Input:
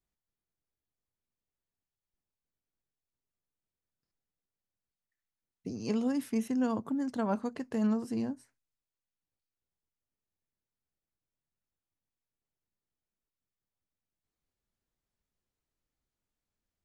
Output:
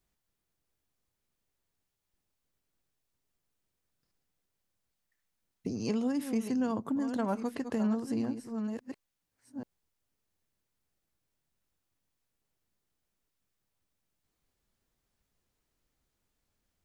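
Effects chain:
delay that plays each chunk backwards 688 ms, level −11 dB
downward compressor 2 to 1, threshold −43 dBFS, peak gain reduction 10 dB
level +8 dB

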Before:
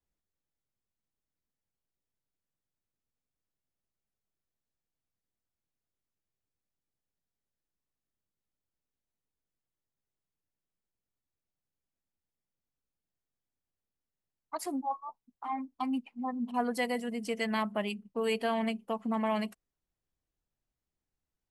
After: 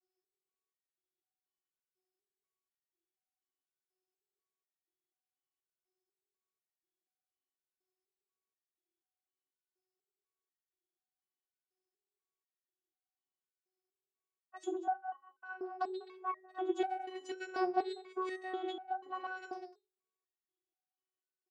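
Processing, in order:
mains-hum notches 50/100/150/200/250/300/350/400/450 Hz
channel vocoder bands 8, saw 373 Hz
slap from a distant wall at 34 metres, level −12 dB
step-sequenced resonator 4.1 Hz 180–770 Hz
level +17 dB

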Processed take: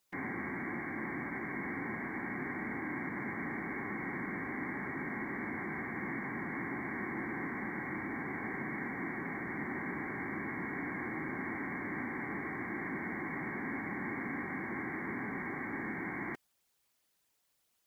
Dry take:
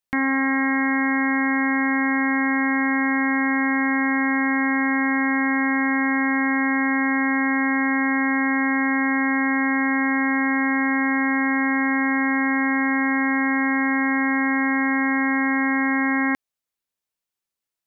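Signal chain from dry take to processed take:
brickwall limiter −24 dBFS, peak gain reduction 10.5 dB
background noise white −70 dBFS
random phases in short frames
level −7.5 dB

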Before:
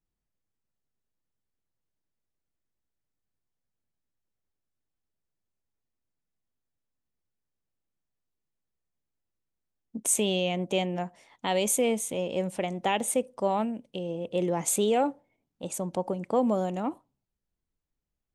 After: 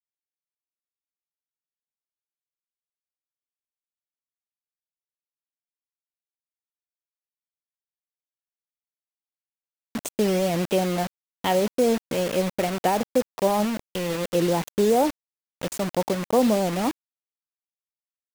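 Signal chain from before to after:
treble cut that deepens with the level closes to 910 Hz, closed at −21.5 dBFS
bit reduction 6 bits
wow of a warped record 78 rpm, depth 100 cents
level +5.5 dB

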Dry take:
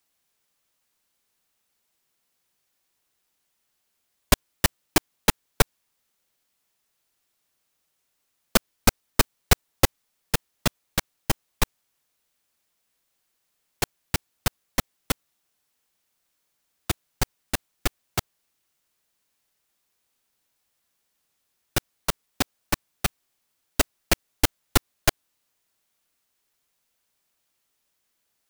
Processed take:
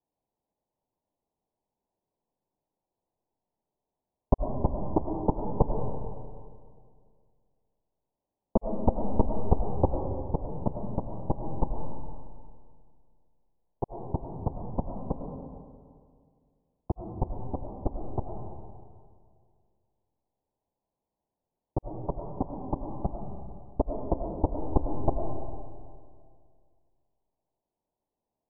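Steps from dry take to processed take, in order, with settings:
Butterworth low-pass 980 Hz 72 dB per octave
convolution reverb RT60 2.1 s, pre-delay 60 ms, DRR 2.5 dB
level −2 dB

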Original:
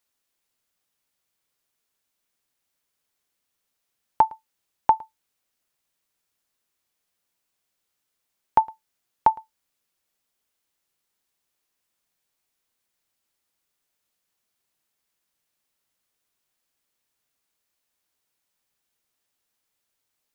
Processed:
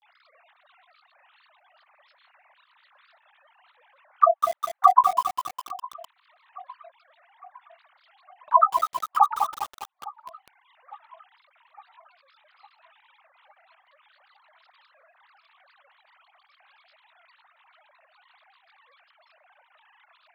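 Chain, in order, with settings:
three sine waves on the formant tracks
high-pass filter 860 Hz 24 dB per octave
spectral tilt −4.5 dB per octave
in parallel at +2.5 dB: upward compression, threshold −22 dBFS
on the sum: granular cloud 100 ms, grains 20 per second, pitch spread up and down by 7 semitones
fake sidechain pumping 113 BPM, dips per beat 1, −6 dB, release 130 ms
on a send: feedback echo with a low-pass in the loop 858 ms, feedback 67%, low-pass 1,200 Hz, level −18 dB
on the sum: feedback echo at a low word length 202 ms, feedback 55%, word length 5 bits, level −6 dB
level −2 dB

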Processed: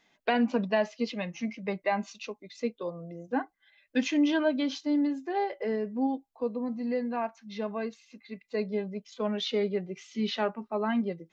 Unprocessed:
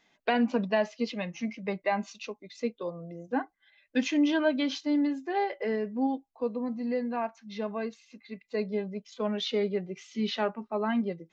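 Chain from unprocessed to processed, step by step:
0:04.42–0:06.78: dynamic equaliser 2,200 Hz, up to −4 dB, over −44 dBFS, Q 0.73

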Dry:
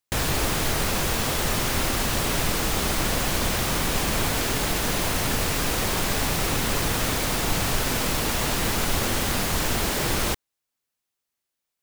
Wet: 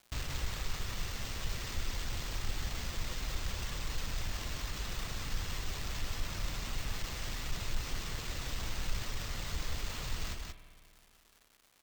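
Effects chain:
each half-wave held at its own peak
first-order pre-emphasis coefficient 0.8
reverb reduction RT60 0.97 s
guitar amp tone stack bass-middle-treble 10-0-1
comb filter 1.3 ms, depth 42%
bad sample-rate conversion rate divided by 4×, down none, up hold
surface crackle 300 per second −53 dBFS
single-tap delay 179 ms −4 dB
spring reverb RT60 2.2 s, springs 53 ms, chirp 55 ms, DRR 12.5 dB
level +4 dB

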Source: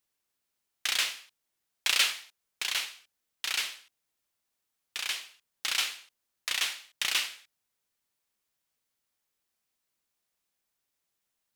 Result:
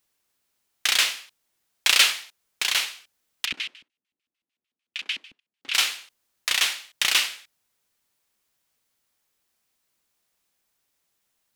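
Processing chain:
0:03.45–0:05.74: auto-filter band-pass square 6.7 Hz 260–2,700 Hz
level +7.5 dB

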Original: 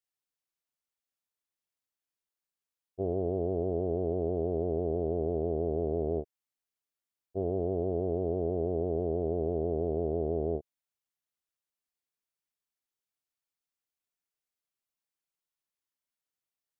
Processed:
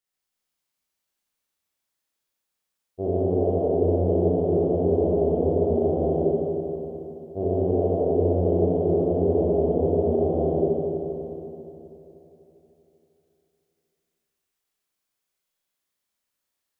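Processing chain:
four-comb reverb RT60 3.4 s, combs from 30 ms, DRR −6.5 dB
level +2.5 dB

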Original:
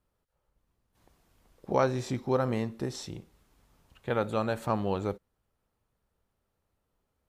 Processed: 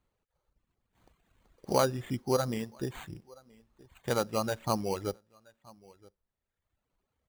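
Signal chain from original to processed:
sample-rate reduction 5,300 Hz, jitter 0%
single-tap delay 974 ms −23 dB
reverb reduction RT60 1.3 s

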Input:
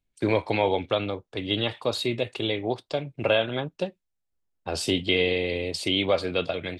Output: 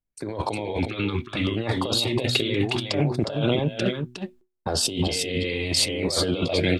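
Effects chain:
hum removal 122.5 Hz, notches 3
compressor whose output falls as the input rises −34 dBFS, ratio −1
gain on a spectral selection 0:00.81–0:01.20, 420–970 Hz −25 dB
single-tap delay 361 ms −4.5 dB
auto-filter notch saw down 0.68 Hz 360–4,400 Hz
noise gate with hold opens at −54 dBFS
one half of a high-frequency compander decoder only
level +8 dB

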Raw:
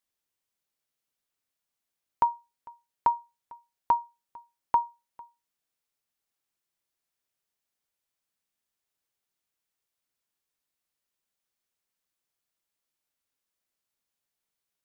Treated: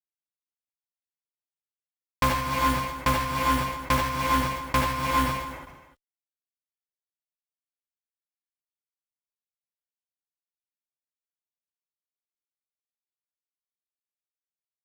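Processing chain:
adaptive Wiener filter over 15 samples
low-shelf EQ 160 Hz +8.5 dB
in parallel at −1 dB: downward compressor, threshold −28 dBFS, peak gain reduction 9.5 dB
on the sum: resonances in every octave C, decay 0.17 s
noise that follows the level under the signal 22 dB
fuzz pedal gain 50 dB, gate −60 dBFS
single-tap delay 289 ms −15 dB
reverb whose tail is shaped and stops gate 460 ms rising, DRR −2.5 dB
level that may fall only so fast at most 53 dB per second
level −5 dB

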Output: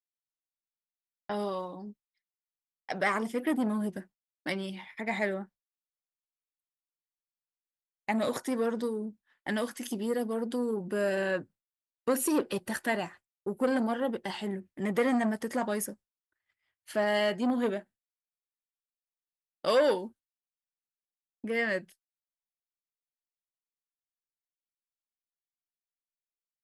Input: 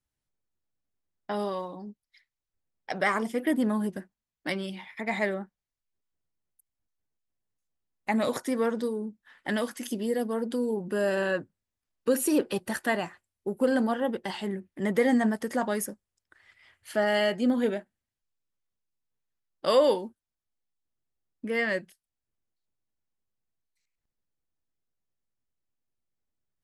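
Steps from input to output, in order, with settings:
downward expander −45 dBFS
saturating transformer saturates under 800 Hz
level −1.5 dB

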